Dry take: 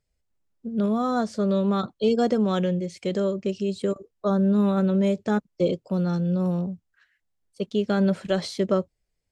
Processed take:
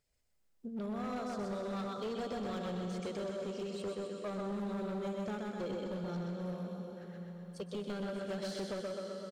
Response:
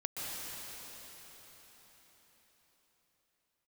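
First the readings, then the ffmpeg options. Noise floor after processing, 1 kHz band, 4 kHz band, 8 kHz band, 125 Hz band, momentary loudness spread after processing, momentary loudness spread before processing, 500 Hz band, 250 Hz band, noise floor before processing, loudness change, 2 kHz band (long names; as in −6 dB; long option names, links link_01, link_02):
−72 dBFS, −12.0 dB, −10.5 dB, can't be measured, −16.0 dB, 6 LU, 8 LU, −13.5 dB, −16.0 dB, −78 dBFS, −15.0 dB, −10.5 dB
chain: -filter_complex "[0:a]lowshelf=frequency=260:gain=-7,aecho=1:1:127|254|381|508|635|762:0.668|0.307|0.141|0.0651|0.0299|0.0138,acompressor=threshold=-47dB:ratio=2,asplit=2[link_01][link_02];[1:a]atrim=start_sample=2205,highshelf=frequency=7200:gain=7[link_03];[link_02][link_03]afir=irnorm=-1:irlink=0,volume=-5.5dB[link_04];[link_01][link_04]amix=inputs=2:normalize=0,volume=32dB,asoftclip=hard,volume=-32dB,volume=-2.5dB"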